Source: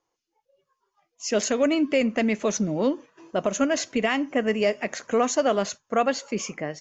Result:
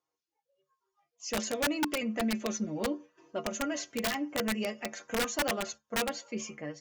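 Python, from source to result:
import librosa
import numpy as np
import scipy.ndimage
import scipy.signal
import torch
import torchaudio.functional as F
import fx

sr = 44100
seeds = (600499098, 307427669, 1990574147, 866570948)

y = scipy.signal.sosfilt(scipy.signal.butter(2, 53.0, 'highpass', fs=sr, output='sos'), x)
y = fx.stiff_resonator(y, sr, f0_hz=70.0, decay_s=0.23, stiffness=0.008)
y = (np.mod(10.0 ** (21.0 / 20.0) * y + 1.0, 2.0) - 1.0) / 10.0 ** (21.0 / 20.0)
y = y * librosa.db_to_amplitude(-2.0)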